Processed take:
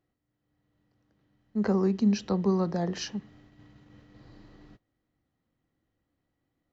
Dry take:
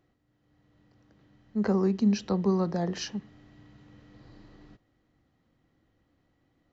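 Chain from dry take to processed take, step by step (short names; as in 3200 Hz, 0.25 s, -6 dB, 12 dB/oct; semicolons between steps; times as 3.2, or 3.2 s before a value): gate -54 dBFS, range -9 dB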